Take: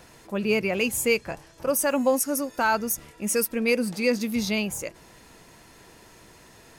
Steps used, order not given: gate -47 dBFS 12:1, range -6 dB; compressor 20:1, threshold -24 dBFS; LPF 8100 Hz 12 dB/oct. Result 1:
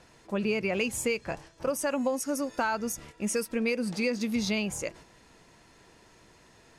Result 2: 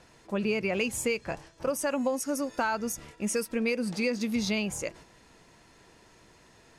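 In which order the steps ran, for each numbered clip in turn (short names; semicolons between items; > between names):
compressor > LPF > gate; gate > compressor > LPF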